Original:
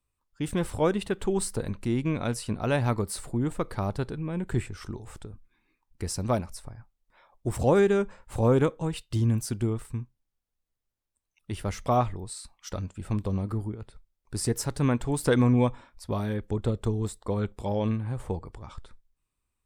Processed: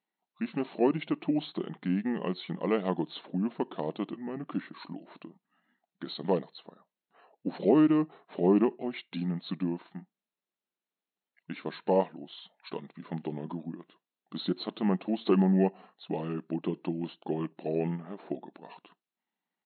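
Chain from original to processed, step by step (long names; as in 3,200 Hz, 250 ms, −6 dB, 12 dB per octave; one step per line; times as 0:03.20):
dynamic equaliser 1,900 Hz, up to −6 dB, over −47 dBFS, Q 1.6
pitch shifter −4.5 semitones
linear-phase brick-wall band-pass 160–4,300 Hz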